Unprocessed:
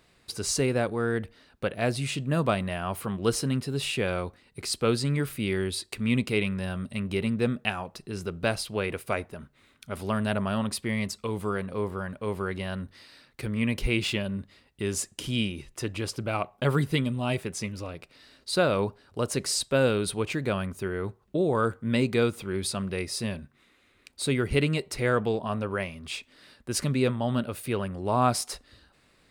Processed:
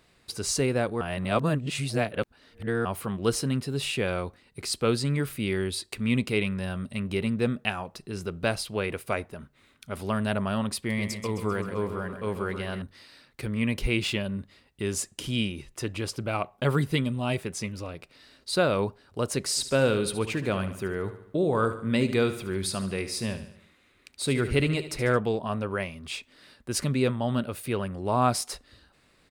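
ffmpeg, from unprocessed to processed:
-filter_complex "[0:a]asettb=1/sr,asplit=3[a][b][c];[a]atrim=end=10.774[d];[b]atrim=start=10.77:end=12.82,asetpts=PTS-STARTPTS,afade=t=in:d=0.004:c=qsin,afade=t=out:st=2.046:d=0.004:c=qsin,aecho=1:1:131|262|393|524|655|786:0.355|0.192|0.103|0.0559|0.0302|0.0163,atrim=end_sample=90405[e];[c]atrim=start=12.816[f];[d][e]acrossfade=d=0.004:c1=hsin:c2=qsin[g];[g][f]acrossfade=d=0.004:c1=qsin:c2=hsin,asplit=3[h][i][j];[h]afade=t=out:st=19.55:d=0.02[k];[i]aecho=1:1:73|146|219|292|365:0.251|0.128|0.0653|0.0333|0.017,afade=t=in:st=19.55:d=0.02,afade=t=out:st=25.16:d=0.02[l];[j]afade=t=in:st=25.16:d=0.02[m];[k][l][m]amix=inputs=3:normalize=0,asplit=3[n][o][p];[n]atrim=end=1.012[q];[o]atrim=start=1.008:end=2.852,asetpts=PTS-STARTPTS,areverse[r];[p]atrim=start=2.848[s];[q][r]acrossfade=d=0.004:c1=hsin:c2=hsin[t];[t][s]acrossfade=d=0.004:c1=hsin:c2=hsin"

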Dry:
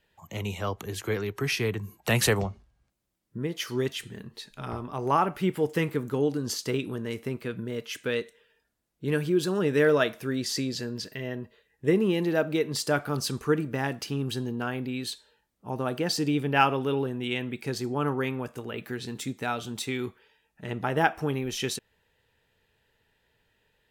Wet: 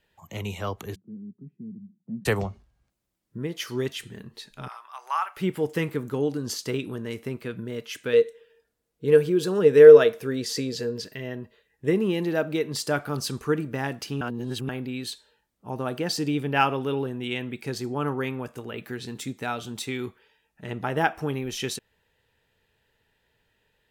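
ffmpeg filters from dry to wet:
-filter_complex "[0:a]asplit=3[a][b][c];[a]afade=t=out:st=0.94:d=0.02[d];[b]asuperpass=centerf=200:order=4:qfactor=3,afade=t=in:st=0.94:d=0.02,afade=t=out:st=2.25:d=0.02[e];[c]afade=t=in:st=2.25:d=0.02[f];[d][e][f]amix=inputs=3:normalize=0,asettb=1/sr,asplit=3[g][h][i];[g]atrim=end=4.684[j];[h]atrim=start=4.68:end=5.37,asetpts=PTS-STARTPTS,afade=t=in:d=0.004:c=qsin,afade=t=out:st=0.686:d=0.004:c=qsin,highpass=f=980:w=0.5412,highpass=f=980:w=1.3066[k];[i]atrim=start=5.366[l];[j][k]acrossfade=d=0.004:c1=hsin:c2=qsin[m];[m][l]acrossfade=d=0.004:c1=qsin:c2=hsin,asettb=1/sr,asplit=3[n][o][p];[n]atrim=end=8.134[q];[o]atrim=start=8.13:end=11.04,asetpts=PTS-STARTPTS,afade=t=in:d=0.004:c=qsin,afade=t=out:st=2.906:d=0.004:c=qsin,equalizer=f=460:t=o:w=0.2:g=15[r];[p]atrim=start=11.036[s];[q][r]acrossfade=d=0.004:c1=hsin:c2=qsin[t];[t][s]acrossfade=d=0.004:c1=qsin:c2=hsin,asplit=3[u][v][w];[u]atrim=end=14.212[x];[v]atrim=start=14.208:end=14.692,asetpts=PTS-STARTPTS,areverse[y];[w]atrim=start=14.688[z];[x][y]acrossfade=d=0.004:c1=hsin:c2=hsin[aa];[aa][z]acrossfade=d=0.004:c1=hsin:c2=hsin"

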